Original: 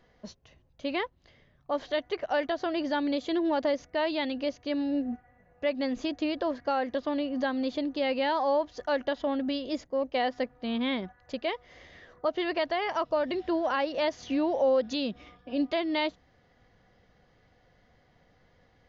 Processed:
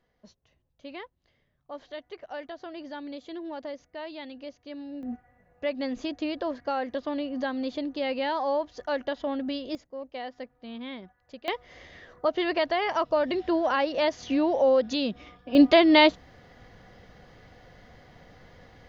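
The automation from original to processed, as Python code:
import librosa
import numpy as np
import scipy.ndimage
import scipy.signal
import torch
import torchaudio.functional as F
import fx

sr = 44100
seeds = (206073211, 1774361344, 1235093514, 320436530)

y = fx.gain(x, sr, db=fx.steps((0.0, -10.0), (5.03, -1.0), (9.75, -9.0), (11.48, 3.0), (15.55, 11.5)))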